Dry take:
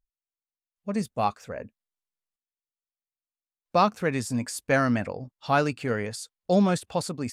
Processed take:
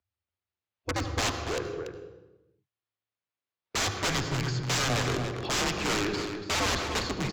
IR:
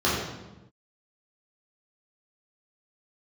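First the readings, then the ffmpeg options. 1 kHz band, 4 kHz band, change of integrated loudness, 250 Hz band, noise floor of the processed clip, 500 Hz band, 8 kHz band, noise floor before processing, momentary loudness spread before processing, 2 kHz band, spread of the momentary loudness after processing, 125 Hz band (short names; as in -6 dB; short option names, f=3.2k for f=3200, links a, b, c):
-5.5 dB, +9.5 dB, -3.0 dB, -7.0 dB, under -85 dBFS, -5.5 dB, +6.0 dB, under -85 dBFS, 15 LU, +1.0 dB, 8 LU, -0.5 dB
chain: -filter_complex "[0:a]acrossover=split=280 4700:gain=0.2 1 0.0794[a][b][c];[a][b][c]amix=inputs=3:normalize=0,bandreject=f=5.9k:w=26,acontrast=36,aresample=16000,aeval=exprs='(mod(10*val(0)+1,2)-1)/10':c=same,aresample=44100,afreqshift=-110,asoftclip=type=tanh:threshold=-22dB,asplit=2[d][e];[e]adelay=285.7,volume=-7dB,highshelf=f=4k:g=-6.43[f];[d][f]amix=inputs=2:normalize=0,asplit=2[g][h];[1:a]atrim=start_sample=2205,adelay=74[i];[h][i]afir=irnorm=-1:irlink=0,volume=-23dB[j];[g][j]amix=inputs=2:normalize=0"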